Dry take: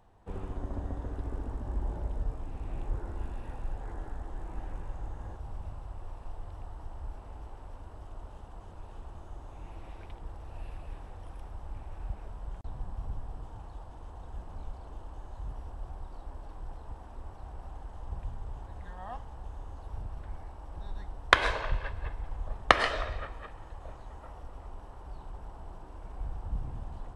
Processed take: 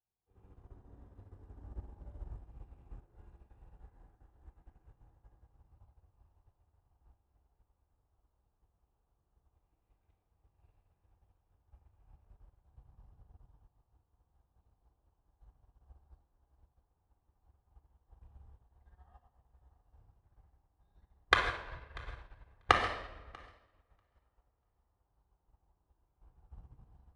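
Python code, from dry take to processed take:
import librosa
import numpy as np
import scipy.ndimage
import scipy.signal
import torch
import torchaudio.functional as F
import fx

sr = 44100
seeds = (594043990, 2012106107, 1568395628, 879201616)

y = scipy.signal.sosfilt(scipy.signal.butter(2, 40.0, 'highpass', fs=sr, output='sos'), x)
y = fx.echo_feedback(y, sr, ms=641, feedback_pct=22, wet_db=-11.5)
y = fx.room_shoebox(y, sr, seeds[0], volume_m3=1900.0, walls='mixed', distance_m=3.8)
y = fx.upward_expand(y, sr, threshold_db=-36.0, expansion=2.5)
y = F.gain(torch.from_numpy(y), -6.5).numpy()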